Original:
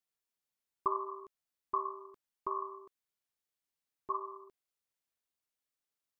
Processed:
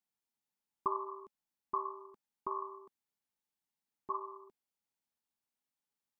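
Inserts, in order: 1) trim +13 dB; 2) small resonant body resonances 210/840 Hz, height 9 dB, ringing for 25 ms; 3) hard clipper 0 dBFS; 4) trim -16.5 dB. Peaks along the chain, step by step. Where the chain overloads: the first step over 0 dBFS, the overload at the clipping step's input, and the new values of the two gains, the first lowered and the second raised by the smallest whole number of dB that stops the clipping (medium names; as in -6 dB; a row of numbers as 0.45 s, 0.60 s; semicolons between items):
-5.0 dBFS, -3.5 dBFS, -3.5 dBFS, -20.0 dBFS; nothing clips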